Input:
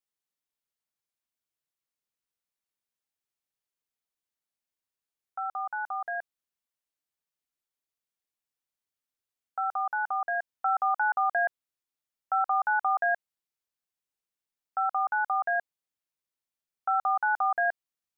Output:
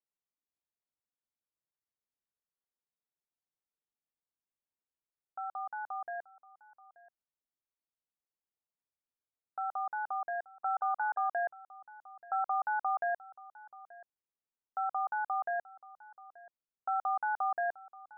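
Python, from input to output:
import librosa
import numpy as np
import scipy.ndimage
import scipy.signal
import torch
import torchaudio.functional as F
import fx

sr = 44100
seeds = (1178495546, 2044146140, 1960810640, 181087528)

y = scipy.signal.sosfilt(scipy.signal.butter(2, 1200.0, 'lowpass', fs=sr, output='sos'), x)
y = y + 10.0 ** (-20.0 / 20.0) * np.pad(y, (int(881 * sr / 1000.0), 0))[:len(y)]
y = y * 10.0 ** (-4.0 / 20.0)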